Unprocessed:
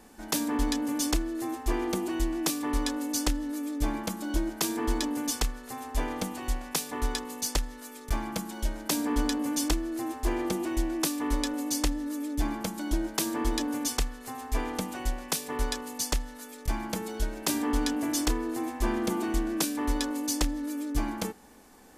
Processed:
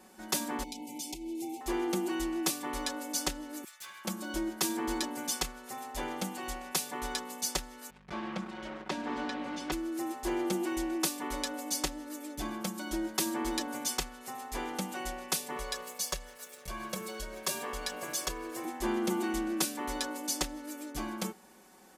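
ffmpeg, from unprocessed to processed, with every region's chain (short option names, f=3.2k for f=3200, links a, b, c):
-filter_complex "[0:a]asettb=1/sr,asplit=3[a][b][c];[a]atrim=end=0.634[d];[b]atrim=start=0.63:end=1.61,asetpts=PTS-STARTPTS,afade=t=in:d=0.004:c=qsin,afade=t=out:st=0.976:d=0.004:c=qsin,equalizer=f=570:t=o:w=0.36:g=-10,acompressor=threshold=-31dB:ratio=10:attack=3.2:release=140:knee=1:detection=peak,asuperstop=centerf=1400:order=20:qfactor=1.2[e];[c]atrim=start=1.606[f];[d][e]acrossfade=d=0.004:c1=hsin:c2=qsin[g];[g][f]acrossfade=d=0.004:c1=qsin:c2=hsin,asettb=1/sr,asplit=3[h][i][j];[h]atrim=end=3.644[k];[i]atrim=start=3.64:end=4.05,asetpts=PTS-STARTPTS,afade=t=in:d=0.004:c=qsin,afade=t=out:st=0.406:d=0.004:c=qsin,highpass=f=1.3k:w=0.5412,highpass=f=1.3k:w=1.3066,aeval=exprs='clip(val(0),-1,0.00562)':c=same[l];[j]atrim=start=4.046[m];[k][l]acrossfade=d=0.004:c1=hsin:c2=qsin[n];[n][m]acrossfade=d=0.004:c1=qsin:c2=hsin,asettb=1/sr,asplit=3[o][p][q];[o]atrim=end=7.904[r];[p]atrim=start=7.9:end=9.72,asetpts=PTS-STARTPTS,afade=t=in:d=0.004:c=qsin,afade=t=out:st=1.816:d=0.004:c=qsin,acrusher=bits=5:mix=0:aa=0.5,highpass=110,lowpass=2.8k,aeval=exprs='val(0)+0.00355*(sin(2*PI*50*n/s)+sin(2*PI*2*50*n/s)/2+sin(2*PI*3*50*n/s)/3+sin(2*PI*4*50*n/s)/4+sin(2*PI*5*50*n/s)/5)':c=same[s];[q]atrim=start=9.716[t];[r][s]acrossfade=d=0.004:c1=hsin:c2=qsin[u];[u][t]acrossfade=d=0.004:c1=qsin:c2=hsin,asettb=1/sr,asplit=3[v][w][x];[v]atrim=end=15.564[y];[w]atrim=start=15.56:end=18.65,asetpts=PTS-STARTPTS,afade=t=in:d=0.004:c=qsin,afade=t=out:st=3.086:d=0.004:c=qsin,aecho=1:1:1.8:0.9,atrim=end_sample=136269,aeval=exprs='sgn(val(0))*max(abs(val(0))-0.00316,0)':c=same,acompressor=threshold=-32dB:ratio=1.5:attack=3.2:release=140:knee=1:detection=peak[z];[x]atrim=start=18.646[aa];[y][z]acrossfade=d=0.004:c1=hsin:c2=qsin[ab];[ab][aa]acrossfade=d=0.004:c1=qsin:c2=hsin,highpass=f=190:p=1,aecho=1:1:5.4:0.75,volume=-3.5dB"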